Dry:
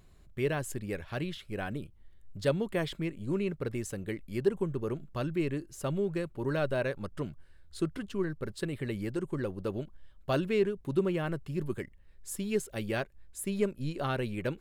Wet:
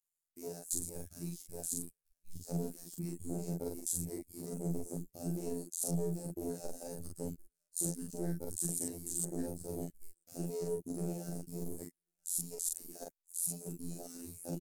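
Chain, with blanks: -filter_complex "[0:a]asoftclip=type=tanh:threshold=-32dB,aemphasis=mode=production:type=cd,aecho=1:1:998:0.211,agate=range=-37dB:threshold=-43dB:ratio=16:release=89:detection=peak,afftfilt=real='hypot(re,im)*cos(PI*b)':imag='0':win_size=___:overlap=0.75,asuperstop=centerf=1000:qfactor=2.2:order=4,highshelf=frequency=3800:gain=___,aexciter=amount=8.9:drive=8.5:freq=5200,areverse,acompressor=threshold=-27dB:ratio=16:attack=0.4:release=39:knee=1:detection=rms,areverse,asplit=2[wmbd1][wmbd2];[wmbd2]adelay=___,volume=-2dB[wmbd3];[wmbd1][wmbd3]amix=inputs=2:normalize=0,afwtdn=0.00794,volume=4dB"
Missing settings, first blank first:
2048, 8, 42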